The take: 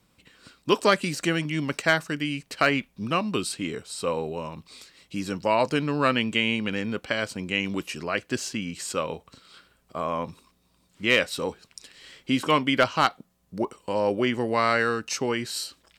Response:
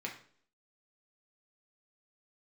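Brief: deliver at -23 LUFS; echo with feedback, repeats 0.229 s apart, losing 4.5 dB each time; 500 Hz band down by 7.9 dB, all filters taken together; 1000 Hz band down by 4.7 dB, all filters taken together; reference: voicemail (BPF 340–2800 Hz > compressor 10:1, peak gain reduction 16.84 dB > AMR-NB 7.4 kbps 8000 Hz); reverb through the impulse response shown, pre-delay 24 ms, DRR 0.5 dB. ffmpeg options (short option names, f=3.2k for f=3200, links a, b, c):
-filter_complex "[0:a]equalizer=f=500:t=o:g=-7.5,equalizer=f=1k:t=o:g=-4,aecho=1:1:229|458|687|916|1145|1374|1603|1832|2061:0.596|0.357|0.214|0.129|0.0772|0.0463|0.0278|0.0167|0.01,asplit=2[a][b];[1:a]atrim=start_sample=2205,adelay=24[c];[b][c]afir=irnorm=-1:irlink=0,volume=-2dB[d];[a][d]amix=inputs=2:normalize=0,highpass=340,lowpass=2.8k,acompressor=threshold=-33dB:ratio=10,volume=16dB" -ar 8000 -c:a libopencore_amrnb -b:a 7400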